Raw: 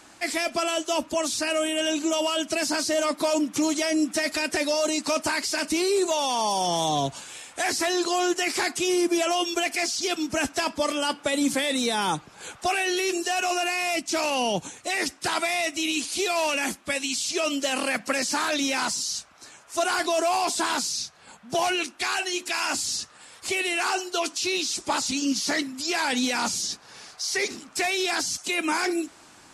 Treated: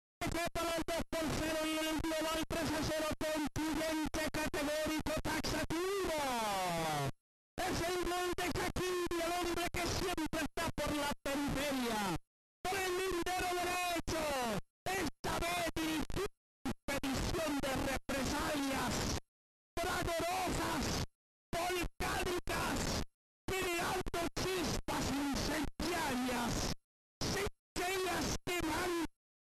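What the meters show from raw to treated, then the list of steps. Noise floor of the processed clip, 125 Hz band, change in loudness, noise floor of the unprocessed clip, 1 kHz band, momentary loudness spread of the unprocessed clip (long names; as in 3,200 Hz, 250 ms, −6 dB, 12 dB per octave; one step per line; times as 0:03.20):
below −85 dBFS, +1.5 dB, −12.0 dB, −51 dBFS, −11.0 dB, 5 LU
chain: time-frequency box erased 0:16.26–0:16.65, 240–7,900 Hz
parametric band 110 Hz +9.5 dB 0.22 octaves
spectral peaks only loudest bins 32
comparator with hysteresis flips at −29 dBFS
level −8.5 dB
MP2 192 kbit/s 44,100 Hz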